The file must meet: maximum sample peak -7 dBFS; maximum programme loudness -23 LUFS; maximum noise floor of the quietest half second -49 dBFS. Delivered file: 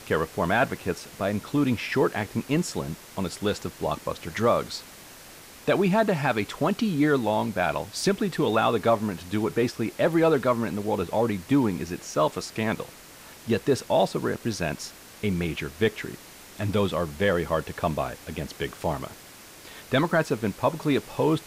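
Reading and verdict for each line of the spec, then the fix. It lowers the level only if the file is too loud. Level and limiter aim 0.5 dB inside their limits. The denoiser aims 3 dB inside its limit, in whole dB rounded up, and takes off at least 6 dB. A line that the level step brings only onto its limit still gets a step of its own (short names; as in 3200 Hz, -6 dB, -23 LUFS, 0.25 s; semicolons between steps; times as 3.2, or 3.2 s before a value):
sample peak -11.5 dBFS: OK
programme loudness -26.0 LUFS: OK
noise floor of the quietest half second -47 dBFS: fail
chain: denoiser 6 dB, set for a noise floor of -47 dBFS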